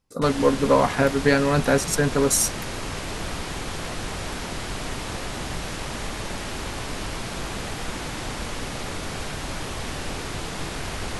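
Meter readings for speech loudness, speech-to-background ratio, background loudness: -21.0 LUFS, 10.5 dB, -31.5 LUFS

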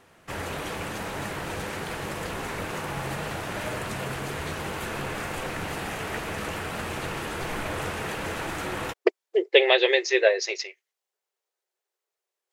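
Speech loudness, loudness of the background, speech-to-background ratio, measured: -22.0 LUFS, -32.0 LUFS, 10.0 dB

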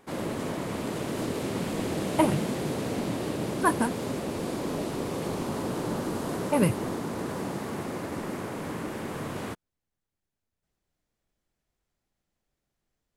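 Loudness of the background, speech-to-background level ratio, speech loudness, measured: -32.5 LUFS, 5.0 dB, -27.5 LUFS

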